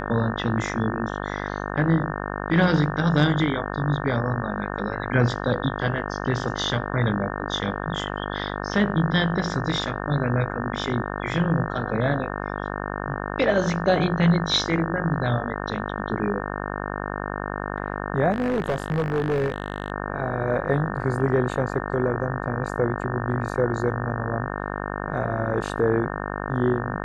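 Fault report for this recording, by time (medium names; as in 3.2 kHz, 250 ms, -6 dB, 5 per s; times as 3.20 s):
buzz 50 Hz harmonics 36 -30 dBFS
18.31–19.92 s: clipped -19 dBFS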